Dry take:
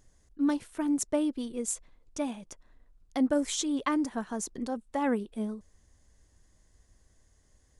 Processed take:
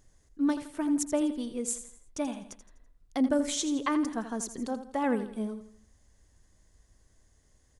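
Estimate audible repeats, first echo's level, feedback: 4, −11.5 dB, 41%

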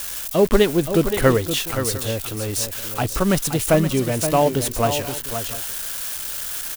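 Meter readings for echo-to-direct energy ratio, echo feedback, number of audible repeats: −8.5 dB, repeats not evenly spaced, 2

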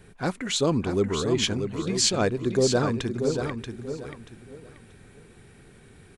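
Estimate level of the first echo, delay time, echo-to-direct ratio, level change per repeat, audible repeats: −7.0 dB, 633 ms, −6.5 dB, −11.5 dB, 3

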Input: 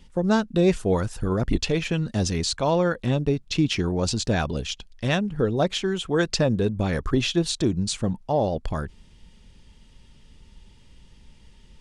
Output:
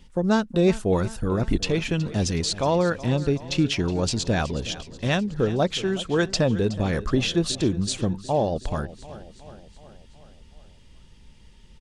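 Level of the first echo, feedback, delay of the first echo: −16.5 dB, 60%, 370 ms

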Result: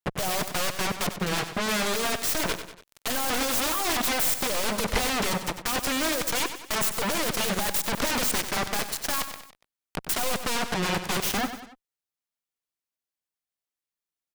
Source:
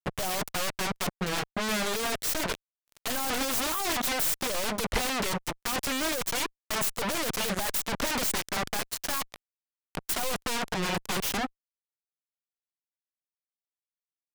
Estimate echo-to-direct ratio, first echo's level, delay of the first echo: −9.5 dB, −10.5 dB, 95 ms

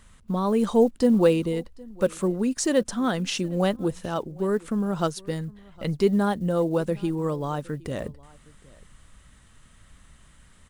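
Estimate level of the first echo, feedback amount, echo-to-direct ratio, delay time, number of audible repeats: −24.0 dB, repeats not evenly spaced, −24.0 dB, 763 ms, 1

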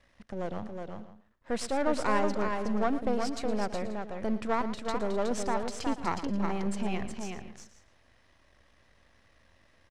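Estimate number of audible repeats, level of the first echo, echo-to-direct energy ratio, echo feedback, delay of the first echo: 5, −14.0 dB, −4.0 dB, repeats not evenly spaced, 114 ms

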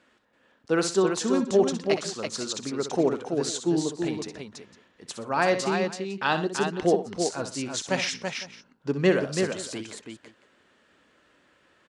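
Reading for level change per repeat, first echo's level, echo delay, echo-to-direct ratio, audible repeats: repeats not evenly spaced, −10.0 dB, 63 ms, −4.0 dB, 4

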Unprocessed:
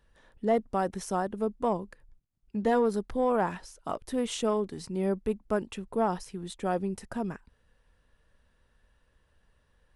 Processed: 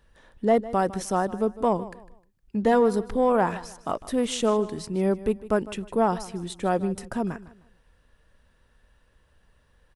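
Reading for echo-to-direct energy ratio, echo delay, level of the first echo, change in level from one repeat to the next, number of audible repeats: −16.5 dB, 154 ms, −17.0 dB, −10.5 dB, 2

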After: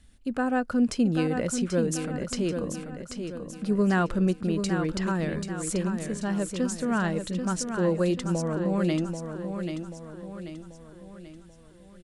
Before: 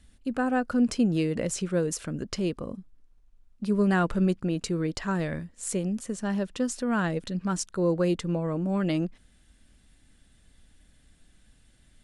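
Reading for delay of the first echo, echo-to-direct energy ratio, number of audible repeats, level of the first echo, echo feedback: 786 ms, −6.0 dB, 5, −7.0 dB, 47%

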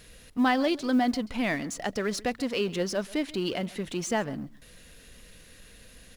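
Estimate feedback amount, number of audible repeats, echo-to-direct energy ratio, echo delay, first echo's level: repeats not evenly spaced, 1, −21.0 dB, 134 ms, −21.0 dB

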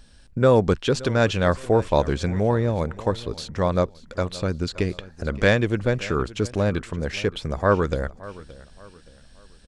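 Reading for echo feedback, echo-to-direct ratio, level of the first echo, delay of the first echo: 36%, −18.5 dB, −19.0 dB, 572 ms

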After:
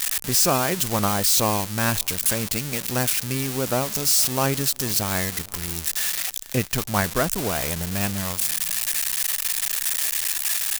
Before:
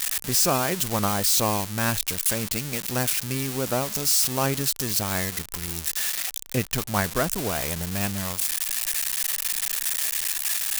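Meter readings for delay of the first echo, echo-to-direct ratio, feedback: 458 ms, −23.5 dB, 36%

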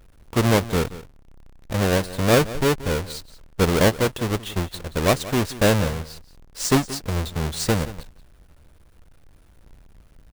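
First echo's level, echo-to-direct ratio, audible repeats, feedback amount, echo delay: −16.5 dB, −16.5 dB, 1, repeats not evenly spaced, 178 ms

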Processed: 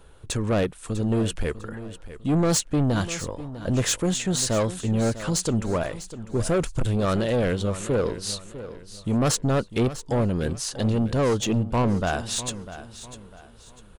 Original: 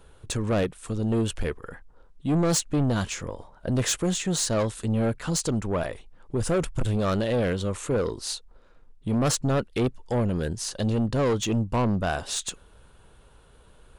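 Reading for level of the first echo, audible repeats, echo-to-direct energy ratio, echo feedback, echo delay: −14.0 dB, 3, −13.5 dB, 34%, 649 ms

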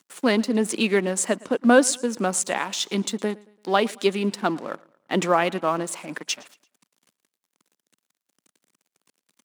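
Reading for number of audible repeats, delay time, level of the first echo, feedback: 2, 113 ms, −23.5 dB, 41%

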